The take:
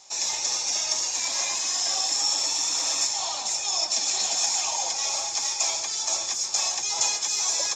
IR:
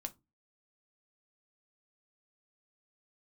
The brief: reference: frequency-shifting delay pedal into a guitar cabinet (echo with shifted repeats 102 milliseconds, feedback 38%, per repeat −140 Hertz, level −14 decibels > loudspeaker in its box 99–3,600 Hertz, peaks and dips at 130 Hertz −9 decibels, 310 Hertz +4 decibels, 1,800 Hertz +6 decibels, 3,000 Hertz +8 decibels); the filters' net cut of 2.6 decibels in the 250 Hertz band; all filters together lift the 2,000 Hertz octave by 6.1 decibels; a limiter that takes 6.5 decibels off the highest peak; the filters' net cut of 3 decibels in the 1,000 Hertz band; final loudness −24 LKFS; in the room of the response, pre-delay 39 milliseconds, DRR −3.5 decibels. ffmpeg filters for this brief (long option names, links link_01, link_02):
-filter_complex "[0:a]equalizer=frequency=250:width_type=o:gain=-6.5,equalizer=frequency=1000:width_type=o:gain=-4.5,equalizer=frequency=2000:width_type=o:gain=4,alimiter=limit=-16.5dB:level=0:latency=1,asplit=2[link_01][link_02];[1:a]atrim=start_sample=2205,adelay=39[link_03];[link_02][link_03]afir=irnorm=-1:irlink=0,volume=6dB[link_04];[link_01][link_04]amix=inputs=2:normalize=0,asplit=5[link_05][link_06][link_07][link_08][link_09];[link_06]adelay=102,afreqshift=-140,volume=-14dB[link_10];[link_07]adelay=204,afreqshift=-280,volume=-22.4dB[link_11];[link_08]adelay=306,afreqshift=-420,volume=-30.8dB[link_12];[link_09]adelay=408,afreqshift=-560,volume=-39.2dB[link_13];[link_05][link_10][link_11][link_12][link_13]amix=inputs=5:normalize=0,highpass=99,equalizer=frequency=130:width_type=q:width=4:gain=-9,equalizer=frequency=310:width_type=q:width=4:gain=4,equalizer=frequency=1800:width_type=q:width=4:gain=6,equalizer=frequency=3000:width_type=q:width=4:gain=8,lowpass=frequency=3600:width=0.5412,lowpass=frequency=3600:width=1.3066,volume=2.5dB"